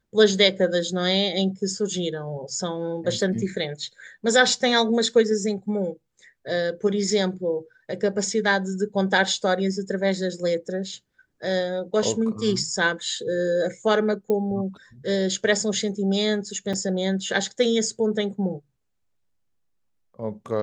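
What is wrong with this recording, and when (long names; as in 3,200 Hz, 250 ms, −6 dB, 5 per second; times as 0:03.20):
0:14.30: click −15 dBFS
0:16.73–0:16.74: drop-out 5.3 ms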